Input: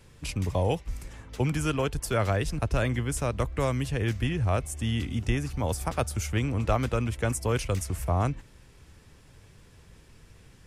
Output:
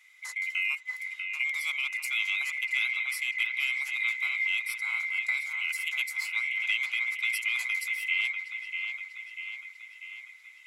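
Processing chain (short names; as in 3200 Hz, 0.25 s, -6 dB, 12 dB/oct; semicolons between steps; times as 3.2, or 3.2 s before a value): band-swap scrambler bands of 2000 Hz; HPF 1100 Hz 24 dB/oct; on a send: dark delay 0.643 s, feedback 57%, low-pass 3000 Hz, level -5 dB; on the sum: gain -4.5 dB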